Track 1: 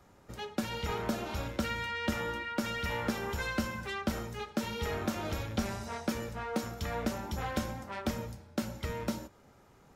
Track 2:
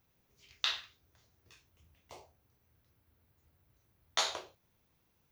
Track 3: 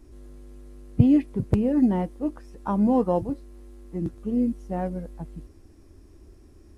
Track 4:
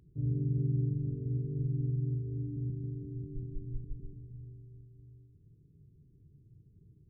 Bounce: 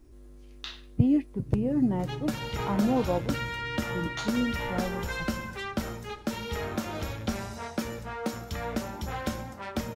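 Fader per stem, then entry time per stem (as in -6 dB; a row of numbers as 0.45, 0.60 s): +1.5, -7.5, -5.0, -7.0 dB; 1.70, 0.00, 0.00, 1.30 s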